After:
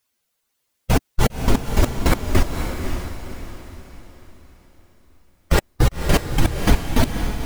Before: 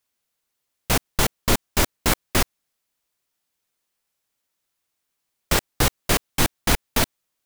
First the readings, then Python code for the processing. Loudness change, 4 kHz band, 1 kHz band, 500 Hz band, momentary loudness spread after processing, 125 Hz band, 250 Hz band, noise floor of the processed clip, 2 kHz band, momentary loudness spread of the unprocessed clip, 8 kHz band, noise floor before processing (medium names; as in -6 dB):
+0.5 dB, -4.0 dB, +0.5 dB, +3.0 dB, 16 LU, +7.5 dB, +5.5 dB, -74 dBFS, -1.5 dB, 3 LU, -6.5 dB, -79 dBFS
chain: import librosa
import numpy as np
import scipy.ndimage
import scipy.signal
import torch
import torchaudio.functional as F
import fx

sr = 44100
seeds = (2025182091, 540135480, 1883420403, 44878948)

p1 = fx.spec_expand(x, sr, power=1.8)
p2 = fx.rider(p1, sr, range_db=10, speed_s=0.5)
p3 = p1 + (p2 * 10.0 ** (-1.0 / 20.0))
y = fx.echo_diffused(p3, sr, ms=546, feedback_pct=40, wet_db=-6)